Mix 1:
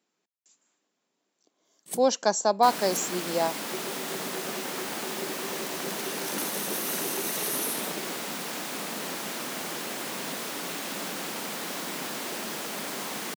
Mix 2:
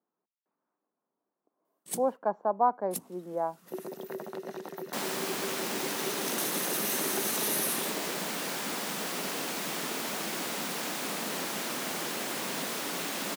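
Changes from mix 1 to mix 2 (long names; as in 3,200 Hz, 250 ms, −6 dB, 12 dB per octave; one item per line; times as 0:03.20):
speech: add transistor ladder low-pass 1,400 Hz, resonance 30%
second sound: entry +2.30 s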